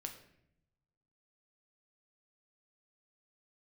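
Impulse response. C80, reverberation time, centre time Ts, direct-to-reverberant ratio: 12.0 dB, 0.75 s, 16 ms, 3.5 dB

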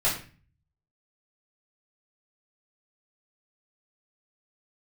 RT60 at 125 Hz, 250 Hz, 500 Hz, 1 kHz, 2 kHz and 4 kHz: 0.85, 0.60, 0.40, 0.35, 0.40, 0.35 seconds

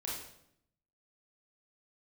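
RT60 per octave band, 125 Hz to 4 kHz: 1.0, 0.95, 0.80, 0.70, 0.65, 0.60 seconds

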